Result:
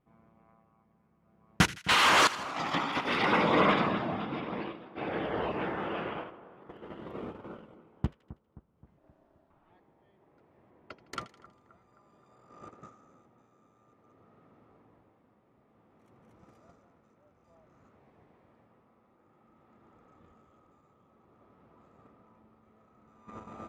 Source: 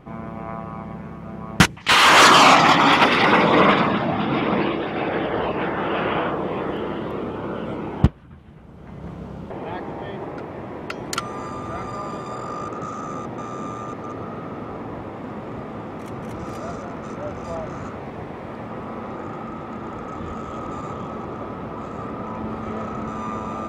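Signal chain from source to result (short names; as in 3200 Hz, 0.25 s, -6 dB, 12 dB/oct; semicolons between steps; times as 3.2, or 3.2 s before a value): tremolo 0.55 Hz, depth 52%; gate -27 dBFS, range -20 dB; 2.27–3.12 negative-ratio compressor -24 dBFS, ratio -0.5; 8.98–9.7 ring modulator 470 Hz; 10.7–11.53 LPF 3100 Hz 6 dB/oct; split-band echo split 1500 Hz, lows 0.263 s, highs 80 ms, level -16 dB; gain -9 dB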